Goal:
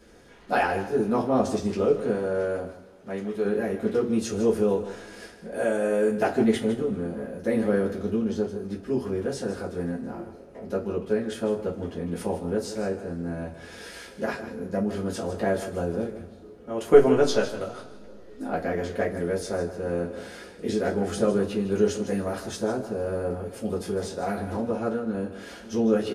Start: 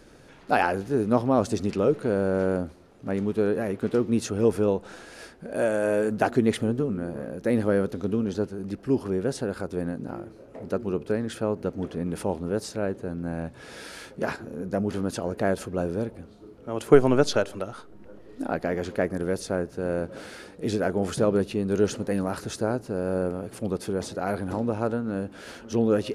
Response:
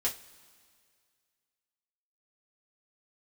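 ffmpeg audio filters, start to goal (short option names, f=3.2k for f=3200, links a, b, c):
-filter_complex "[0:a]asettb=1/sr,asplit=3[a][b][c];[a]atrim=end=2.144[d];[b]atrim=start=2.14:end=3.45,asetpts=PTS-STARTPTS,afade=t=in:d=0.004:c=qsin,afade=t=out:st=1.306:d=0.004:c=qsin,lowshelf=f=410:g=-8[e];[c]atrim=start=3.446[f];[d][e]acrossfade=d=0.004:c1=hsin:c2=qsin[g];[g][f]acrossfade=d=0.004:c1=qsin:c2=hsin,aecho=1:1:155:0.237[h];[1:a]atrim=start_sample=2205[i];[h][i]afir=irnorm=-1:irlink=0,volume=-5.5dB"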